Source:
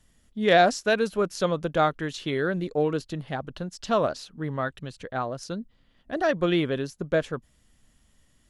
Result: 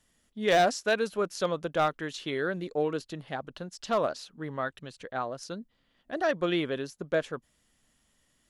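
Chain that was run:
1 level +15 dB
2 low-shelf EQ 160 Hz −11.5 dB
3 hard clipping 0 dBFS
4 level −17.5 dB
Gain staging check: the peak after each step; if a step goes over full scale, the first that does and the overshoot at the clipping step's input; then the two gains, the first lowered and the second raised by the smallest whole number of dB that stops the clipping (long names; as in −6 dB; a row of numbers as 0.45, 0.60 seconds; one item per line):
+7.5, +7.0, 0.0, −17.5 dBFS
step 1, 7.0 dB
step 1 +8 dB, step 4 −10.5 dB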